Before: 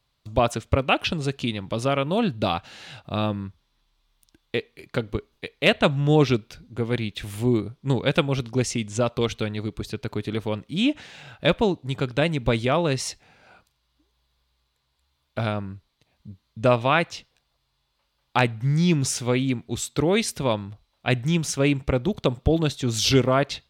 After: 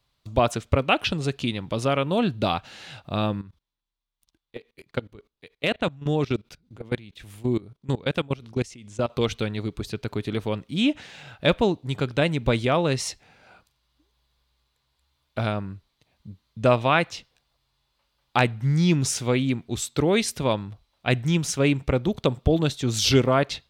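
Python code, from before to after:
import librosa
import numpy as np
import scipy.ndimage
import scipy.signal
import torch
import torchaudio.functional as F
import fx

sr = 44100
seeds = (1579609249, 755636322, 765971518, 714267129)

y = fx.level_steps(x, sr, step_db=22, at=(3.41, 9.1))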